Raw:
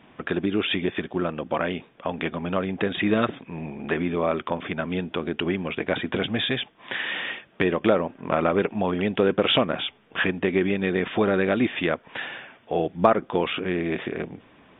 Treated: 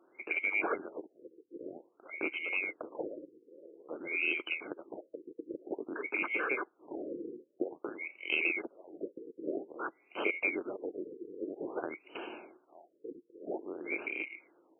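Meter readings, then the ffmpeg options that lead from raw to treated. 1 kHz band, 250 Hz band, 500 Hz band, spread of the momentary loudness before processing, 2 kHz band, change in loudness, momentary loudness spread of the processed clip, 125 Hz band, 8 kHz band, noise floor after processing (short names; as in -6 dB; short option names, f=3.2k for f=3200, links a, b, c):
-16.0 dB, -17.0 dB, -15.5 dB, 9 LU, -6.0 dB, -11.0 dB, 18 LU, under -30 dB, n/a, -72 dBFS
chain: -af "afftfilt=real='real(if(lt(b,920),b+92*(1-2*mod(floor(b/92),2)),b),0)':imag='imag(if(lt(b,920),b+92*(1-2*mod(floor(b/92),2)),b),0)':win_size=2048:overlap=0.75,highpass=f=340:t=q:w=3.9,afftfilt=real='re*lt(b*sr/1024,500*pow(3200/500,0.5+0.5*sin(2*PI*0.51*pts/sr)))':imag='im*lt(b*sr/1024,500*pow(3200/500,0.5+0.5*sin(2*PI*0.51*pts/sr)))':win_size=1024:overlap=0.75,volume=-8.5dB"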